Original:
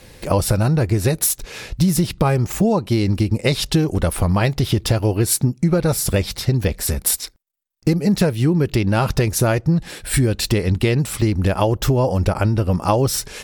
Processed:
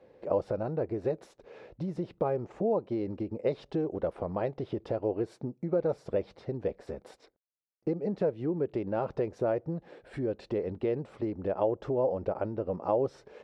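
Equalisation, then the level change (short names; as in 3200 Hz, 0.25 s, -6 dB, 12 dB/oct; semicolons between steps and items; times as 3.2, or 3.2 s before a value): band-pass 510 Hz, Q 1.7; air absorption 82 m; -6.0 dB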